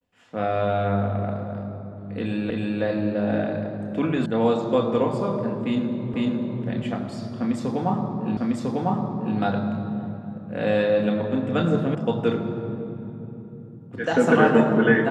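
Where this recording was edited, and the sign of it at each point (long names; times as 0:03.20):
0:02.50: the same again, the last 0.32 s
0:04.26: cut off before it has died away
0:06.14: the same again, the last 0.5 s
0:08.37: the same again, the last 1 s
0:11.95: cut off before it has died away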